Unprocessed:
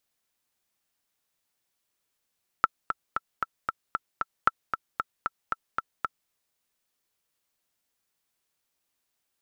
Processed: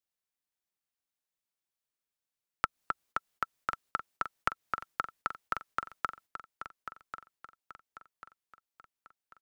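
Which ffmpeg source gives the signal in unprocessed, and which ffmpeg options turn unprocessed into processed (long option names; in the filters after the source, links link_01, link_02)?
-f lavfi -i "aevalsrc='pow(10,(-5.5-8*gte(mod(t,7*60/229),60/229))/20)*sin(2*PI*1330*mod(t,60/229))*exp(-6.91*mod(t,60/229)/0.03)':duration=3.66:sample_rate=44100"
-filter_complex "[0:a]agate=range=-13dB:threshold=-57dB:ratio=16:detection=peak,acrossover=split=240[link_01][link_02];[link_02]acompressor=threshold=-26dB:ratio=6[link_03];[link_01][link_03]amix=inputs=2:normalize=0,asplit=2[link_04][link_05];[link_05]aecho=0:1:1092|2184|3276|4368:0.316|0.126|0.0506|0.0202[link_06];[link_04][link_06]amix=inputs=2:normalize=0"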